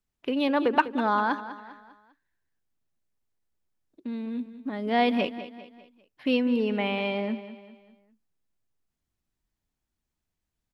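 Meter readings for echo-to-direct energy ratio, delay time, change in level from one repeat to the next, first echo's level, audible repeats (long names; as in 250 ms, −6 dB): −12.5 dB, 199 ms, −7.0 dB, −13.5 dB, 4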